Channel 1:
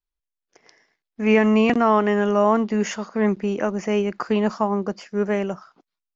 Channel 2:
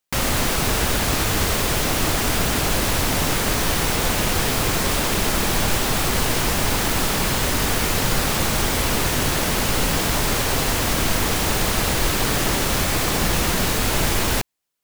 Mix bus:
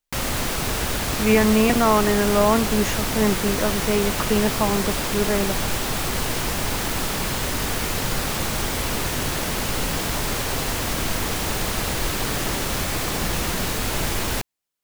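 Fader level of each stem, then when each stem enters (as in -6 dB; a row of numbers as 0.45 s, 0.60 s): -0.5 dB, -4.0 dB; 0.00 s, 0.00 s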